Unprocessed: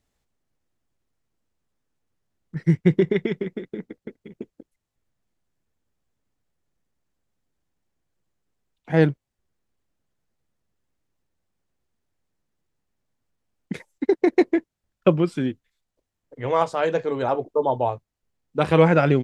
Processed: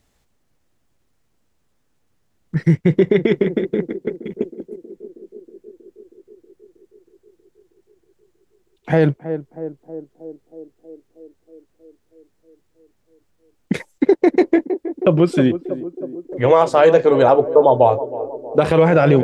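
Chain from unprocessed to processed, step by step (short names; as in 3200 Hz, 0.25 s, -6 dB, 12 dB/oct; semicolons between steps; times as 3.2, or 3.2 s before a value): in parallel at +1 dB: compressor, threshold -25 dBFS, peak gain reduction 14.5 dB; on the sum: narrowing echo 0.318 s, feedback 77%, band-pass 400 Hz, level -14 dB; limiter -9.5 dBFS, peak gain reduction 9 dB; dynamic EQ 560 Hz, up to +5 dB, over -33 dBFS, Q 1.6; gain +4.5 dB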